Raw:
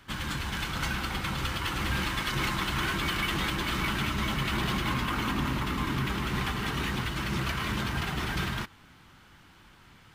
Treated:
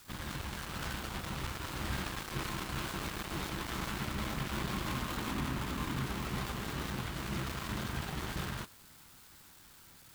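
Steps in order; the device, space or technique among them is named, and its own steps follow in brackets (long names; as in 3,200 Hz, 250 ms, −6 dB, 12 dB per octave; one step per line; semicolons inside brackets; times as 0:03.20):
budget class-D amplifier (gap after every zero crossing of 0.26 ms; spike at every zero crossing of −35 dBFS)
level −5.5 dB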